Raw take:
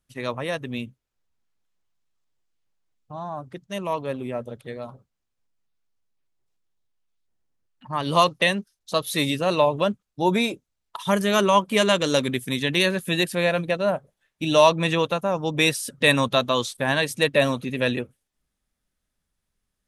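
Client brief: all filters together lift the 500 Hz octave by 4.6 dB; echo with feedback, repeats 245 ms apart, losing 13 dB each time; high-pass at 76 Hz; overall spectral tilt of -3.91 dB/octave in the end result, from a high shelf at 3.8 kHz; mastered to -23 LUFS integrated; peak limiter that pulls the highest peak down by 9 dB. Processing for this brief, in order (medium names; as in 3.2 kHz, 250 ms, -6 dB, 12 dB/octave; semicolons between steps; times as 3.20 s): high-pass 76 Hz; peaking EQ 500 Hz +5.5 dB; treble shelf 3.8 kHz +6.5 dB; peak limiter -9.5 dBFS; feedback delay 245 ms, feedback 22%, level -13 dB; trim -0.5 dB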